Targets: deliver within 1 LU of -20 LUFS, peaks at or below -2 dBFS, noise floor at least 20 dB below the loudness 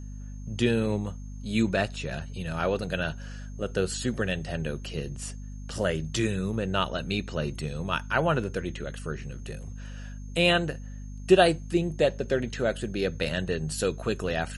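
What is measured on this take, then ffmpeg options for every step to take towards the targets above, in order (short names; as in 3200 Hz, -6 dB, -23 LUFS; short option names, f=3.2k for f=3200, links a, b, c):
hum 50 Hz; harmonics up to 250 Hz; hum level -36 dBFS; steady tone 6400 Hz; tone level -58 dBFS; loudness -28.5 LUFS; peak -7.0 dBFS; loudness target -20.0 LUFS
-> -af "bandreject=f=50:t=h:w=4,bandreject=f=100:t=h:w=4,bandreject=f=150:t=h:w=4,bandreject=f=200:t=h:w=4,bandreject=f=250:t=h:w=4"
-af "bandreject=f=6.4k:w=30"
-af "volume=8.5dB,alimiter=limit=-2dB:level=0:latency=1"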